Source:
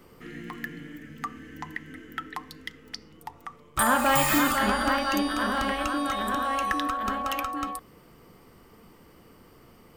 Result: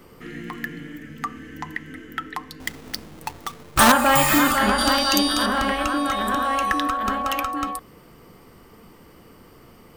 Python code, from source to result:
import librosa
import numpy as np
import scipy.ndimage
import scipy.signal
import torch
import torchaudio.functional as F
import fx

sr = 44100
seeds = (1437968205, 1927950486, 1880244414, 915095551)

y = fx.halfwave_hold(x, sr, at=(2.6, 3.92))
y = fx.high_shelf_res(y, sr, hz=2900.0, db=8.0, q=1.5, at=(4.78, 5.46))
y = y * 10.0 ** (5.0 / 20.0)